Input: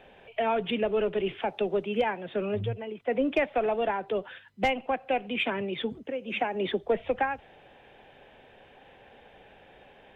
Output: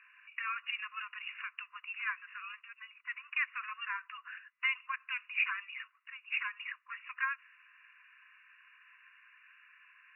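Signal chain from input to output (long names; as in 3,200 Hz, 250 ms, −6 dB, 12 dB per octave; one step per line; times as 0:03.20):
linear-phase brick-wall band-pass 1,000–2,900 Hz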